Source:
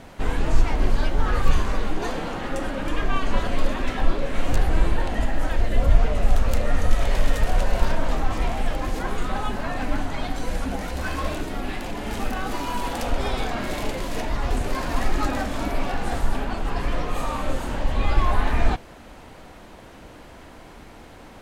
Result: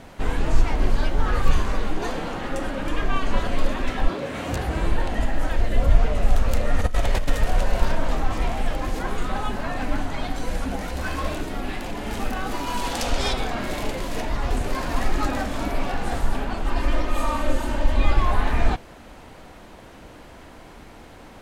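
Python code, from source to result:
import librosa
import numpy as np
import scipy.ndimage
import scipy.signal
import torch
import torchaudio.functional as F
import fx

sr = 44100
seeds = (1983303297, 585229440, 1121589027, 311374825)

y = fx.highpass(x, sr, hz=fx.line((4.07, 93.0), (4.85, 44.0)), slope=24, at=(4.07, 4.85), fade=0.02)
y = fx.over_compress(y, sr, threshold_db=-19.0, ratio=-1.0, at=(6.79, 7.3))
y = fx.peak_eq(y, sr, hz=5500.0, db=fx.line((12.66, 3.0), (13.32, 13.0)), octaves=2.0, at=(12.66, 13.32), fade=0.02)
y = fx.comb(y, sr, ms=3.3, depth=0.65, at=(16.66, 18.12))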